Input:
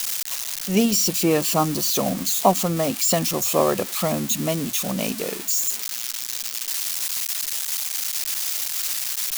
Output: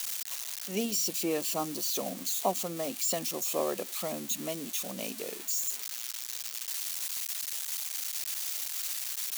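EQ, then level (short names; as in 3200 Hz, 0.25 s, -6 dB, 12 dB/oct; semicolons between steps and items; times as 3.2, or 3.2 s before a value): HPF 280 Hz 12 dB/oct; notch 5100 Hz, Q 27; dynamic EQ 1200 Hz, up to -5 dB, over -37 dBFS, Q 0.85; -9.0 dB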